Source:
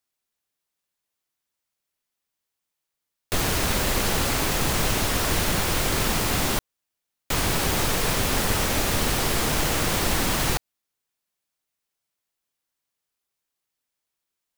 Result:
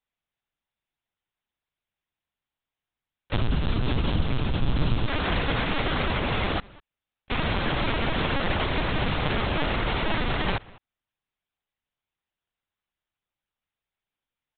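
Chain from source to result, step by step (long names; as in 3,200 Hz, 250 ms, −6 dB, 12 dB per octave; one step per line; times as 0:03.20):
0:03.35–0:05.08: octave-band graphic EQ 125/500/1,000/2,000 Hz +12/−6/−3/−9 dB
slap from a distant wall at 34 metres, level −22 dB
linear-prediction vocoder at 8 kHz pitch kept
level −1 dB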